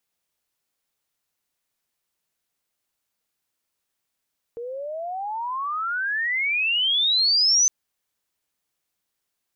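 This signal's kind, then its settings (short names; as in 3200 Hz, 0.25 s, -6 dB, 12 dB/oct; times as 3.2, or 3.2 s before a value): chirp logarithmic 460 Hz -> 6200 Hz -30 dBFS -> -14.5 dBFS 3.11 s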